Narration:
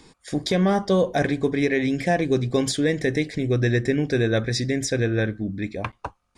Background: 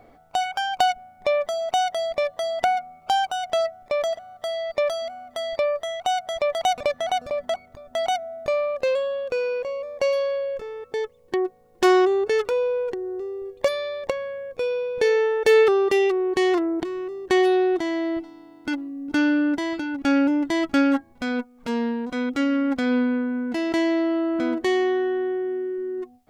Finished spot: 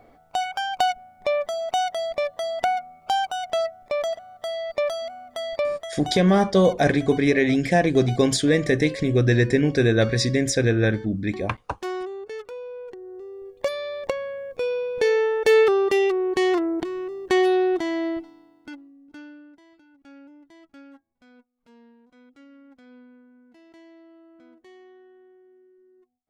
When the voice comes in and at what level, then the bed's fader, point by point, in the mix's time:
5.65 s, +2.5 dB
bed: 5.65 s -1.5 dB
6.32 s -13.5 dB
12.62 s -13.5 dB
14.03 s -0.5 dB
18.07 s -0.5 dB
19.53 s -28 dB

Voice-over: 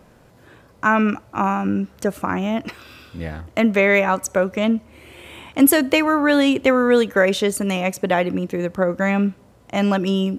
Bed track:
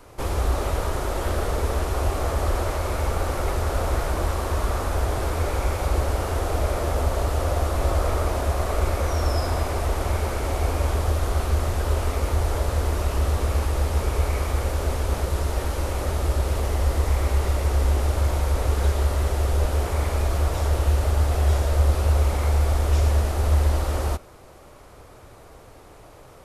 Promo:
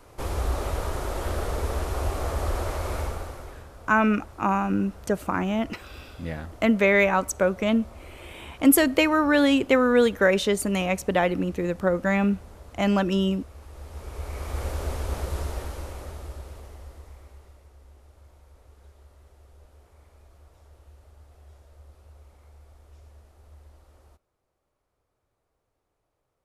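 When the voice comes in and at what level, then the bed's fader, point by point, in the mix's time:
3.05 s, -3.5 dB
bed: 2.99 s -4 dB
3.71 s -23 dB
13.56 s -23 dB
14.64 s -5.5 dB
15.41 s -5.5 dB
17.74 s -31.5 dB

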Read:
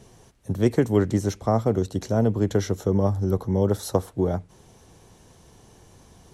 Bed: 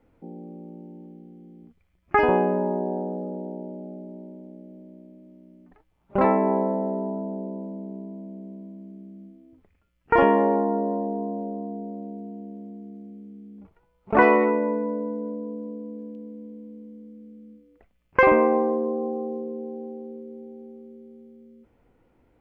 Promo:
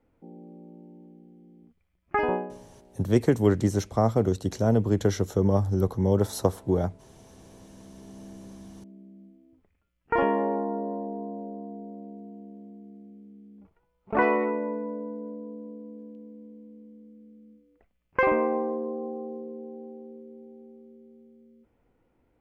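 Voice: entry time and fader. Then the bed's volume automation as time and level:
2.50 s, -1.0 dB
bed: 2.33 s -6 dB
2.67 s -29 dB
7.14 s -29 dB
8.25 s -6 dB

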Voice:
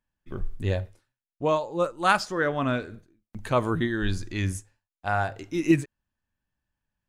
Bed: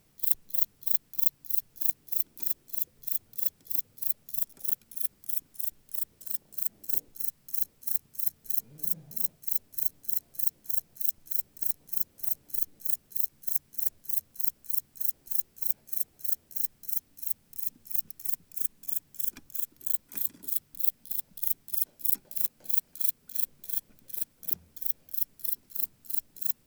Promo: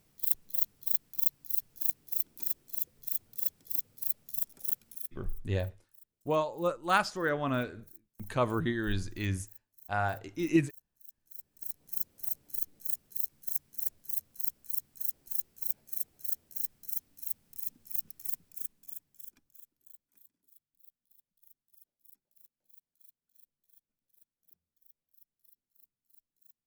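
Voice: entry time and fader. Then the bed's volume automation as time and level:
4.85 s, -5.0 dB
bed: 4.91 s -3 dB
5.34 s -26 dB
11.01 s -26 dB
11.91 s -4.5 dB
18.37 s -4.5 dB
20.36 s -32.5 dB

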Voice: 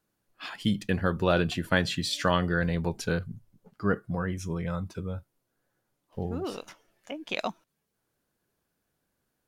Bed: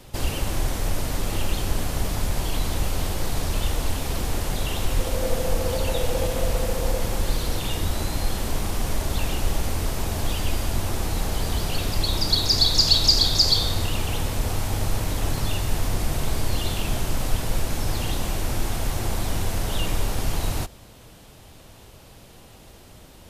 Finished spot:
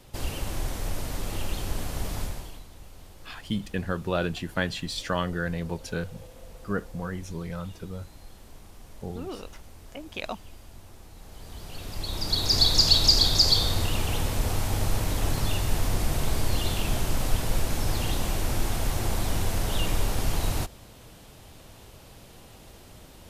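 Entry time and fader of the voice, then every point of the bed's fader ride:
2.85 s, -3.0 dB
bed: 2.22 s -6 dB
2.67 s -22.5 dB
11.15 s -22.5 dB
12.59 s -1.5 dB

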